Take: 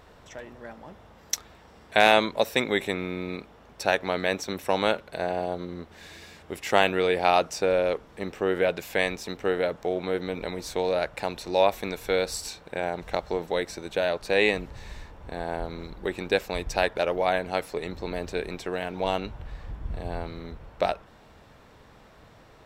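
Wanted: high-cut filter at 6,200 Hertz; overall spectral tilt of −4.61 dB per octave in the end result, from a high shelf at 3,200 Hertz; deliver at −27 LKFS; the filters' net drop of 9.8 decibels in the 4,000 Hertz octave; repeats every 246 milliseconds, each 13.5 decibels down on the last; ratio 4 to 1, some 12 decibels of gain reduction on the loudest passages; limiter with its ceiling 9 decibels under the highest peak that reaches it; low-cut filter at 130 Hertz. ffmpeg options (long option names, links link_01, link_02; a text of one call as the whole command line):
ffmpeg -i in.wav -af "highpass=130,lowpass=6200,highshelf=frequency=3200:gain=-6,equalizer=frequency=4000:width_type=o:gain=-7.5,acompressor=threshold=-30dB:ratio=4,alimiter=limit=-22dB:level=0:latency=1,aecho=1:1:246|492:0.211|0.0444,volume=10dB" out.wav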